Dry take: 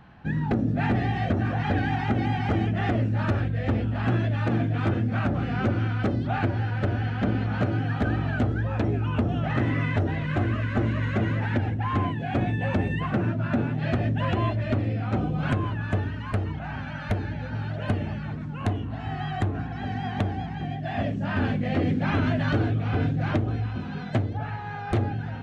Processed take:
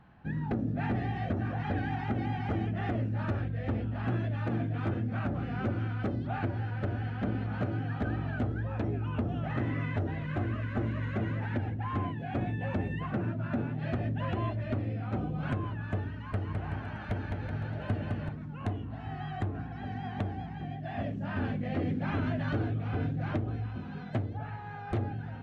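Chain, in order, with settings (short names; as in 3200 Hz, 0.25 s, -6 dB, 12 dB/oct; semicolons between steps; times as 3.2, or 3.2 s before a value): high shelf 3400 Hz -7.5 dB; 16.12–18.29 bouncing-ball echo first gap 0.21 s, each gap 0.8×, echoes 5; gain -7 dB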